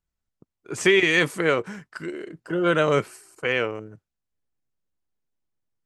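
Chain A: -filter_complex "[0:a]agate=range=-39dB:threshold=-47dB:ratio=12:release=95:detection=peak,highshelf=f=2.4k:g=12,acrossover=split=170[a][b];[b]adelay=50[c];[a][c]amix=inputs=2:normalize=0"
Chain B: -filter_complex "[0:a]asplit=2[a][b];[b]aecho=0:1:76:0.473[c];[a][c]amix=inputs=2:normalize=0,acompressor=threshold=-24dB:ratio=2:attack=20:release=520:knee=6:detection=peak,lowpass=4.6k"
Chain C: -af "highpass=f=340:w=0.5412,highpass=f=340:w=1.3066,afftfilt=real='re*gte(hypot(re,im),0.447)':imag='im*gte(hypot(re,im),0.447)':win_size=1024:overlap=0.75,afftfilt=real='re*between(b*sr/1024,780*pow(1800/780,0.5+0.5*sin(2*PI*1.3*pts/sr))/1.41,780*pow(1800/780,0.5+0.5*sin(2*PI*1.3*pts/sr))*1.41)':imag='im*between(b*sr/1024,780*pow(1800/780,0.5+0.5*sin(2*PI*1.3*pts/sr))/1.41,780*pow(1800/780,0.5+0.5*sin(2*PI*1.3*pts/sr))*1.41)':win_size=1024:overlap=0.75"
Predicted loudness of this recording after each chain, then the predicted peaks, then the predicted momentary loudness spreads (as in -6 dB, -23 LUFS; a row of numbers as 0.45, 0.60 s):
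-18.5, -27.0, -31.0 LUFS; -2.0, -11.0, -16.5 dBFS; 20, 13, 12 LU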